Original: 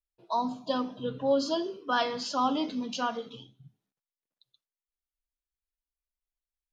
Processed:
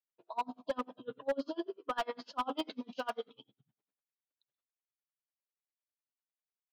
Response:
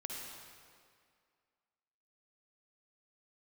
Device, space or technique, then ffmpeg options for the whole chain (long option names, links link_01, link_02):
helicopter radio: -filter_complex "[0:a]highpass=310,lowpass=2700,lowpass=6200,aeval=exprs='val(0)*pow(10,-32*(0.5-0.5*cos(2*PI*10*n/s))/20)':channel_layout=same,asoftclip=type=hard:threshold=-27.5dB,asettb=1/sr,asplit=3[link_01][link_02][link_03];[link_01]atrim=end=2.574[link_04];[link_02]atrim=start=2.57:end=3.28,asetpts=PTS-STARTPTS,afade=type=in:duration=0.004:curve=qsin,afade=type=out:start_time=0.706:duration=0.004:curve=qsin,aemphasis=mode=production:type=75kf[link_05];[link_03]atrim=start=3.276[link_06];[link_04][link_05]acrossfade=duration=0.004:curve1=hsin:curve2=qsin[link_07];[link_07][link_06]acrossfade=duration=0.004:curve1=qsin:curve2=hsin,volume=1dB"